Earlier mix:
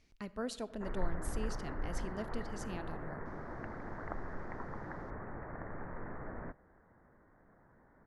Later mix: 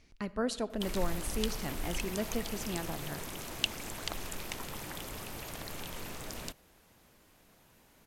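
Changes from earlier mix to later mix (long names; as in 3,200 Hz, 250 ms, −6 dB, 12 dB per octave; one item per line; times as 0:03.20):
speech +6.5 dB
background: remove Butterworth low-pass 1,900 Hz 72 dB per octave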